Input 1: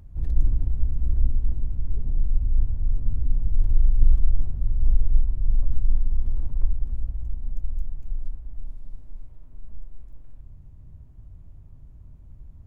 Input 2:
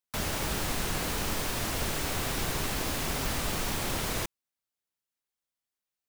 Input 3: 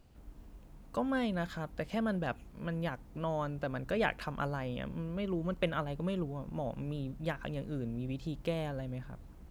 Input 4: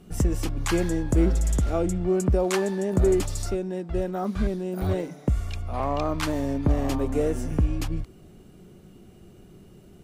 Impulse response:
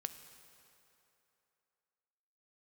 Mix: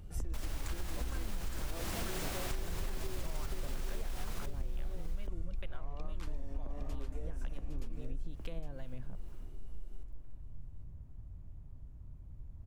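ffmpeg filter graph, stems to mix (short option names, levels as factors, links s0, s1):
-filter_complex "[0:a]acompressor=threshold=0.126:ratio=6,volume=0.447,asplit=3[s0][s1][s2];[s0]atrim=end=1.74,asetpts=PTS-STARTPTS,afade=t=out:st=1.736:d=0.004:c=hsin[s3];[s1]atrim=start=1.74:end=2.51,asetpts=PTS-STARTPTS,volume=0[s4];[s2]atrim=start=2.51,asetpts=PTS-STARTPTS,afade=t=in:d=0.004:c=hsin[s5];[s3][s4][s5]concat=n=3:v=0:a=1,asplit=3[s6][s7][s8];[s7]volume=0.501[s9];[s8]volume=0.398[s10];[1:a]adelay=200,volume=0.501,asplit=2[s11][s12];[s12]volume=0.15[s13];[2:a]acrossover=split=720[s14][s15];[s14]aeval=exprs='val(0)*(1-0.7/2+0.7/2*cos(2*PI*2.2*n/s))':c=same[s16];[s15]aeval=exprs='val(0)*(1-0.7/2-0.7/2*cos(2*PI*2.2*n/s))':c=same[s17];[s16][s17]amix=inputs=2:normalize=0,volume=1.06[s18];[3:a]highpass=f=320:p=1,volume=0.316,asplit=2[s19][s20];[s20]volume=0.178[s21];[s6][s11]amix=inputs=2:normalize=0,alimiter=level_in=1.12:limit=0.0631:level=0:latency=1:release=198,volume=0.891,volume=1[s22];[s18][s19]amix=inputs=2:normalize=0,acompressor=threshold=0.00794:ratio=4,volume=1[s23];[4:a]atrim=start_sample=2205[s24];[s9][s24]afir=irnorm=-1:irlink=0[s25];[s10][s13][s21]amix=inputs=3:normalize=0,aecho=0:1:810:1[s26];[s22][s23][s25][s26]amix=inputs=4:normalize=0,acompressor=threshold=0.0251:ratio=6"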